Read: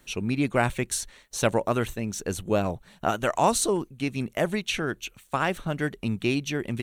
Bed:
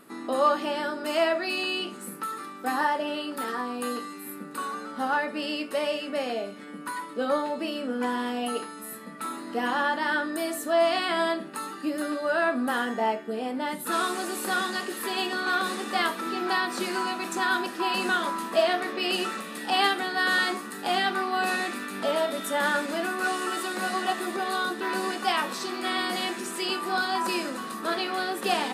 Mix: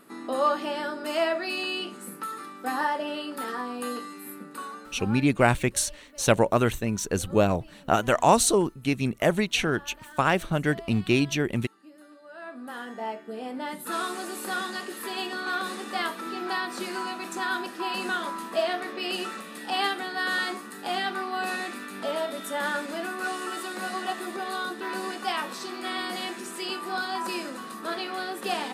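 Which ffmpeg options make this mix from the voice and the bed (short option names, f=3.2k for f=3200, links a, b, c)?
-filter_complex "[0:a]adelay=4850,volume=3dB[a];[1:a]volume=16.5dB,afade=t=out:st=4.29:d=0.99:silence=0.1,afade=t=in:st=12.3:d=1.3:silence=0.125893[b];[a][b]amix=inputs=2:normalize=0"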